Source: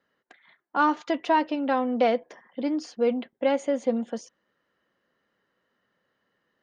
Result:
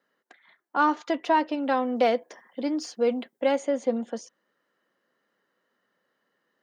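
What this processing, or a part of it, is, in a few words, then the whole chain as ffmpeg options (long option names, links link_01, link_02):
exciter from parts: -filter_complex "[0:a]highpass=200,asettb=1/sr,asplit=3[link_01][link_02][link_03];[link_01]atrim=end=1.584[link_04];[link_02]atrim=start=1.58:end=3.59,asetpts=PTS-STARTPTS,afade=type=in:duration=0.004:curve=qsin,afade=type=out:start_time=2.006:duration=0.004:curve=qsin,highshelf=frequency=5200:gain=8.5[link_05];[link_03]atrim=start=3.586[link_06];[link_04][link_05]acrossfade=duration=0.004:curve1=hsin:curve2=qsin[link_07];[link_07][link_06]acrossfade=duration=0.004:curve1=qsin:curve2=hsin,asplit=2[link_08][link_09];[link_09]highpass=frequency=2500:width=0.5412,highpass=frequency=2500:width=1.3066,asoftclip=type=tanh:threshold=-38.5dB,volume=-11dB[link_10];[link_08][link_10]amix=inputs=2:normalize=0"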